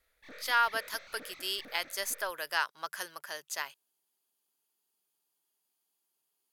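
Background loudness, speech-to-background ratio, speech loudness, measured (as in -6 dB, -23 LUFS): -50.5 LUFS, 16.5 dB, -34.0 LUFS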